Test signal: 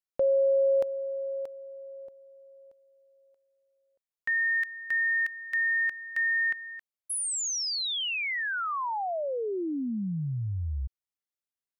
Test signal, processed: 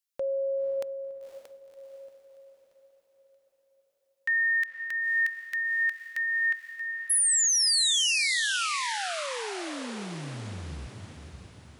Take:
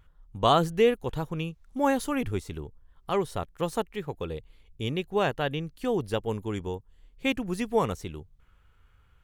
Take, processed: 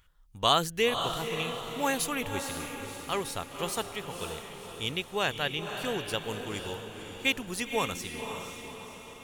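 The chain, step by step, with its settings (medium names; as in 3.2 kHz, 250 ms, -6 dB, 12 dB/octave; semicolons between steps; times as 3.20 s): tilt shelf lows -8 dB, about 1.5 kHz; echo that smears into a reverb 526 ms, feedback 52%, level -7 dB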